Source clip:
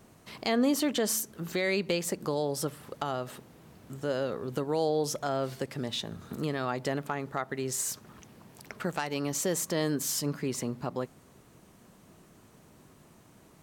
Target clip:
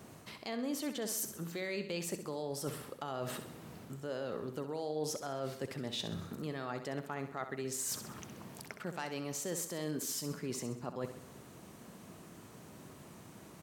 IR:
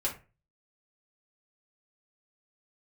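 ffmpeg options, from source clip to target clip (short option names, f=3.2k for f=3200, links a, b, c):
-af "highpass=72,areverse,acompressor=threshold=-40dB:ratio=6,areverse,aecho=1:1:65|130|195|260|325:0.316|0.155|0.0759|0.0372|0.0182,volume=3.5dB"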